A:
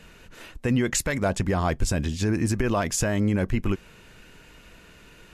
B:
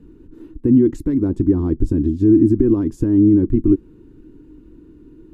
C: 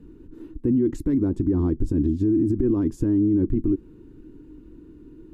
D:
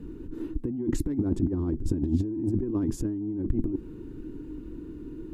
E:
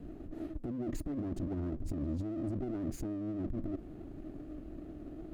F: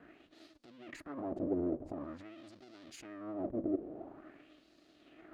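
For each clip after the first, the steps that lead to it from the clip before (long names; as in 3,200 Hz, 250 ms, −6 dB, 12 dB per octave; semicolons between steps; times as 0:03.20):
drawn EQ curve 100 Hz 0 dB, 200 Hz −3 dB, 310 Hz +15 dB, 640 Hz −24 dB, 920 Hz −15 dB, 2,400 Hz −30 dB, 3,600 Hz −26 dB, 6,400 Hz −29 dB, 12,000 Hz −24 dB; level +5.5 dB
brickwall limiter −12.5 dBFS, peak gain reduction 9.5 dB; level −1.5 dB
compressor whose output falls as the input rises −25 dBFS, ratio −0.5
lower of the sound and its delayed copy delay 0.45 ms; brickwall limiter −23.5 dBFS, peak gain reduction 10 dB; level −5.5 dB
auto-filter band-pass sine 0.47 Hz 450–4,700 Hz; level +11.5 dB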